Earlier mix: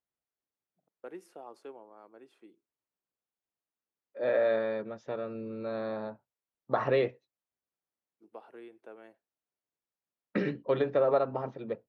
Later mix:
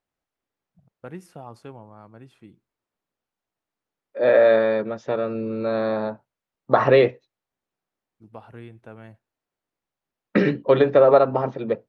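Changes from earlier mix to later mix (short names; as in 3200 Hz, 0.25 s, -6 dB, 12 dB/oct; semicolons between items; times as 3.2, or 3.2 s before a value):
first voice: remove ladder high-pass 300 Hz, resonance 40%; second voice +11.5 dB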